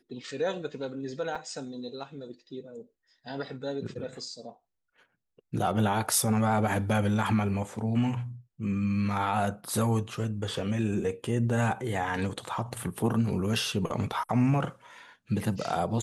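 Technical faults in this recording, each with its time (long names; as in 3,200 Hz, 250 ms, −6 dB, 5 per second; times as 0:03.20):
0:01.35: drop-out 4.7 ms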